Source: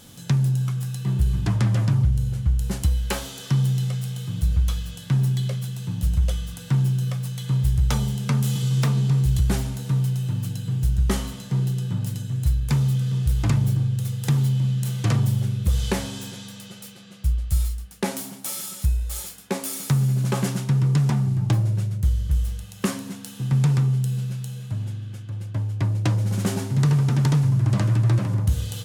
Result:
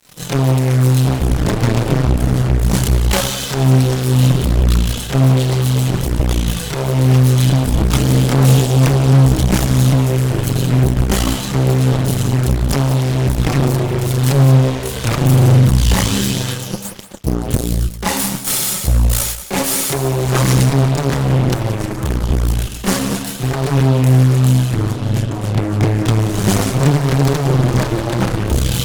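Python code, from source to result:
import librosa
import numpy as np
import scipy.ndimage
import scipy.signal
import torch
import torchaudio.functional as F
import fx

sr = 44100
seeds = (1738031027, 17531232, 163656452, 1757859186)

p1 = fx.fuzz(x, sr, gain_db=34.0, gate_db=-41.0)
p2 = fx.chorus_voices(p1, sr, voices=6, hz=0.49, base_ms=28, depth_ms=4.1, mix_pct=65)
p3 = fx.cheby_harmonics(p2, sr, harmonics=(4,), levels_db=(-12,), full_scale_db=-6.0)
p4 = p3 + fx.echo_single(p3, sr, ms=180, db=-13.0, dry=0)
y = F.gain(torch.from_numpy(p4), 2.0).numpy()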